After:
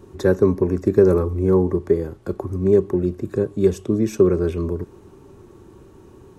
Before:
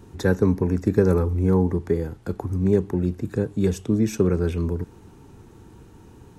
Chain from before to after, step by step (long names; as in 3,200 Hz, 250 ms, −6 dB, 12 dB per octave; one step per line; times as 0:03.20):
hollow resonant body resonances 380/570/1,100 Hz, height 11 dB, ringing for 45 ms
level −1.5 dB